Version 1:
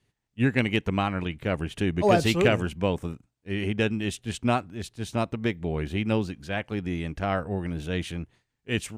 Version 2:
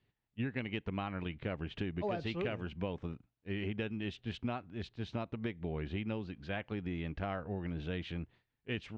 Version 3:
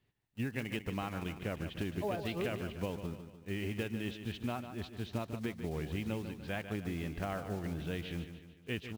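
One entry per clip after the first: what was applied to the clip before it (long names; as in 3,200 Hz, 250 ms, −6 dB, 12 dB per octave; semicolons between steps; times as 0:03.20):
low-pass filter 4,100 Hz 24 dB per octave; downward compressor 5 to 1, threshold −29 dBFS, peak gain reduction 13 dB; level −5 dB
one scale factor per block 5 bits; repeating echo 148 ms, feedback 49%, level −10 dB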